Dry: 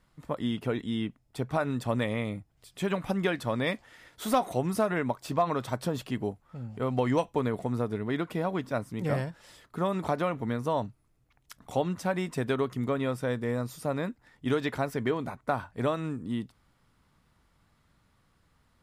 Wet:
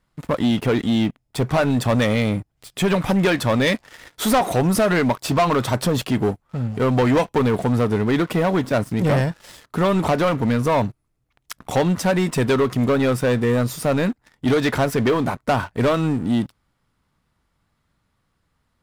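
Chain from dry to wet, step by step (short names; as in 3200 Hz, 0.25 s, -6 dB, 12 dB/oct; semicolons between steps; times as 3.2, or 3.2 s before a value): sample leveller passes 3; gain +3.5 dB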